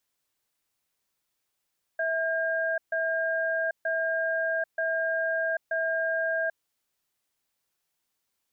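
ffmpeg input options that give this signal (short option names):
-f lavfi -i "aevalsrc='0.0422*(sin(2*PI*652*t)+sin(2*PI*1610*t))*clip(min(mod(t,0.93),0.79-mod(t,0.93))/0.005,0,1)':d=4.59:s=44100"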